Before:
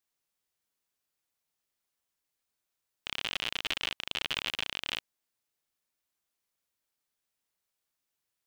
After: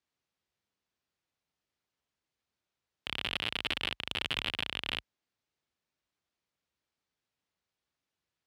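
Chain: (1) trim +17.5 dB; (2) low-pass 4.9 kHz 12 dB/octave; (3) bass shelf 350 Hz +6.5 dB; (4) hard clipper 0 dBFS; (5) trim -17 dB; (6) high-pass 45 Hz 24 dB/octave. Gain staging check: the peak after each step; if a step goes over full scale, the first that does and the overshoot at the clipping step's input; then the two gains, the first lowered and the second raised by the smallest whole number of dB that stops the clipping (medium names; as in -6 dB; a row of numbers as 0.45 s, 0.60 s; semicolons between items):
+6.0 dBFS, +5.0 dBFS, +6.0 dBFS, 0.0 dBFS, -17.0 dBFS, -16.0 dBFS; step 1, 6.0 dB; step 1 +11.5 dB, step 5 -11 dB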